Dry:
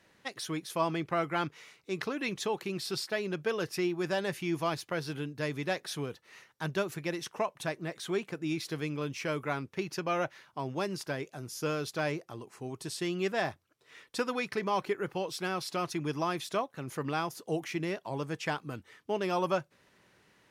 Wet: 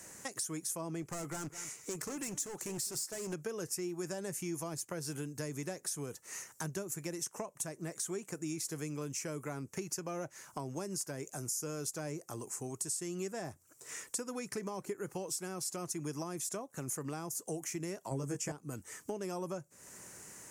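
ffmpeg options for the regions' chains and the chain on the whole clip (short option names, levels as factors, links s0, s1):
-filter_complex "[0:a]asettb=1/sr,asplit=3[s0][s1][s2];[s0]atrim=end=1.024[s3];[s1]atrim=start=1.02:end=3.33,asetpts=PTS-STARTPTS,afade=t=in:d=0.004:c=qsin,afade=t=out:st=2.306:d=0.004:c=qsin,volume=56.2,asoftclip=hard,volume=0.0178,aecho=1:1:208:0.126,atrim=end_sample=101871[s4];[s2]atrim=start=3.326[s5];[s3][s4]acrossfade=d=0.004:c1=hsin:c2=qsin[s6];[s6][s5]acrossfade=d=0.004:c1=qsin:c2=hsin,asettb=1/sr,asplit=3[s7][s8][s9];[s7]atrim=end=18.114[s10];[s8]atrim=start=18.11:end=18.52,asetpts=PTS-STARTPTS,afade=t=in:d=0.004:c=qsin,afade=t=out:st=0.406:d=0.004:c=qsin,bandreject=f=4000:w=5.7,acontrast=60,asplit=2[s11][s12];[s12]adelay=15,volume=0.794[s13];[s11][s13]amix=inputs=2:normalize=0,atrim=end_sample=18081[s14];[s9]atrim=start=18.516[s15];[s10][s14]acrossfade=d=0.004:c1=hsin:c2=qsin[s16];[s16][s15]acrossfade=d=0.004:c1=qsin:c2=hsin,acrossover=split=490[s17][s18];[s18]acompressor=threshold=0.0112:ratio=4[s19];[s17][s19]amix=inputs=2:normalize=0,highshelf=f=5200:t=q:w=3:g=13,acompressor=threshold=0.00316:ratio=3,volume=2.66"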